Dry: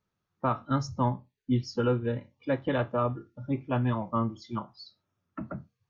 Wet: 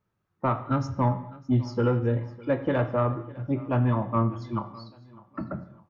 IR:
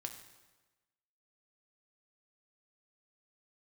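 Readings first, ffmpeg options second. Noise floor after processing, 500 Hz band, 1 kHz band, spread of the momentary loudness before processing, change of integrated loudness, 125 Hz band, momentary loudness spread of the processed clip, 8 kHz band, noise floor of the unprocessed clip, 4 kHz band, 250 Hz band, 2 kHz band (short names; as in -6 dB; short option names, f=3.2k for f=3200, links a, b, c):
-77 dBFS, +3.0 dB, +2.5 dB, 13 LU, +3.5 dB, +5.0 dB, 12 LU, n/a, -83 dBFS, -4.0 dB, +3.0 dB, +1.5 dB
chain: -filter_complex "[0:a]asoftclip=type=tanh:threshold=-18dB,aecho=1:1:604|1208|1812:0.0891|0.0357|0.0143,asplit=2[a][b];[1:a]atrim=start_sample=2205,afade=t=out:st=0.32:d=0.01,atrim=end_sample=14553,lowpass=2.6k[c];[b][c]afir=irnorm=-1:irlink=0,volume=5.5dB[d];[a][d]amix=inputs=2:normalize=0,volume=-3dB"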